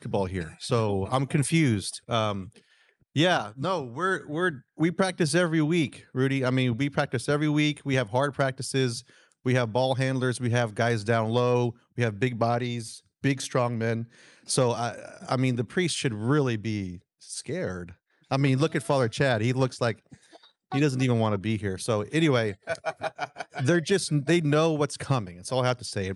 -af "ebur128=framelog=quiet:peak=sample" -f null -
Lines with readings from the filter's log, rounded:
Integrated loudness:
  I:         -26.6 LUFS
  Threshold: -37.0 LUFS
Loudness range:
  LRA:         2.4 LU
  Threshold: -47.0 LUFS
  LRA low:   -28.3 LUFS
  LRA high:  -25.9 LUFS
Sample peak:
  Peak:       -9.4 dBFS